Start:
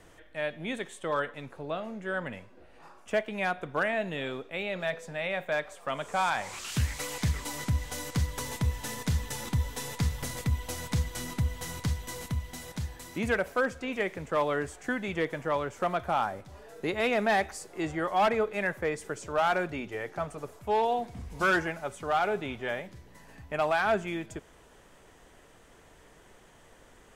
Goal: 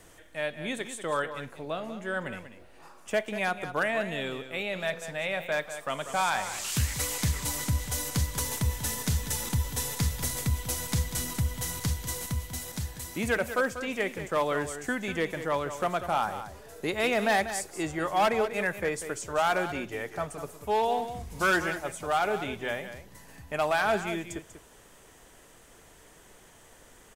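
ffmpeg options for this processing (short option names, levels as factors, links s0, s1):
-filter_complex "[0:a]highshelf=f=5900:g=11.5,asplit=2[s0][s1];[s1]aecho=0:1:192:0.282[s2];[s0][s2]amix=inputs=2:normalize=0"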